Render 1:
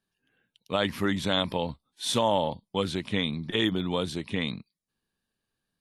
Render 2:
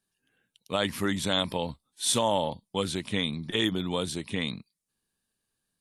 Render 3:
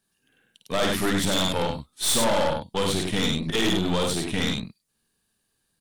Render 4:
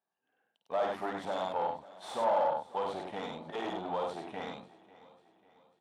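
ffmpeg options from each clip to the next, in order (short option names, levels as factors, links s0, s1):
-af "equalizer=f=9100:t=o:w=1.2:g=10.5,volume=0.841"
-af "aecho=1:1:52.48|96.21:0.562|0.562,aeval=exprs='(tanh(25.1*val(0)+0.65)-tanh(0.65))/25.1':c=same,volume=2.82"
-af "bandpass=f=770:t=q:w=2.8:csg=0,aecho=1:1:544|1088|1632|2176:0.106|0.0498|0.0234|0.011"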